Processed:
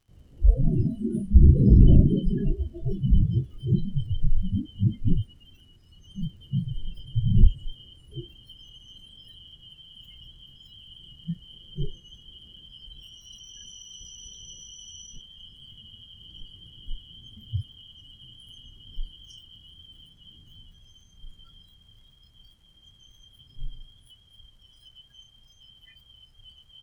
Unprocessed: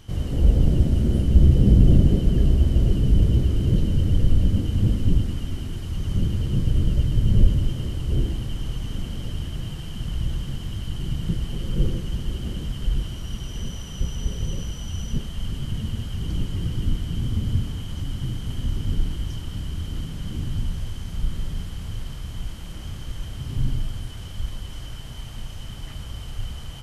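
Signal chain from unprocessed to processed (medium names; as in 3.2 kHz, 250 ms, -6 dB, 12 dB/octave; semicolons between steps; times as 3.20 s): crackle 120 per s -31 dBFS; spectral noise reduction 27 dB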